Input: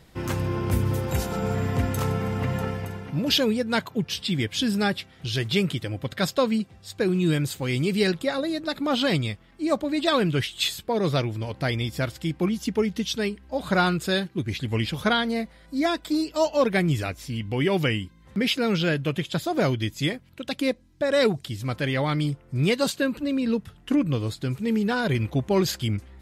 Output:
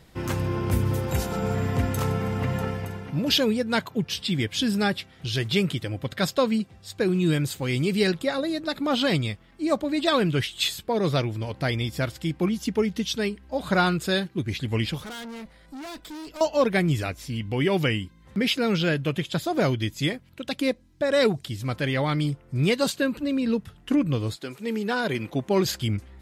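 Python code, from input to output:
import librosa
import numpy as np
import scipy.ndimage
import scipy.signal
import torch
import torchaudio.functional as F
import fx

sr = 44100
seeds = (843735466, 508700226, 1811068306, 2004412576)

y = fx.tube_stage(x, sr, drive_db=36.0, bias=0.4, at=(14.98, 16.41))
y = fx.highpass(y, sr, hz=fx.line((24.35, 390.0), (25.64, 140.0)), slope=12, at=(24.35, 25.64), fade=0.02)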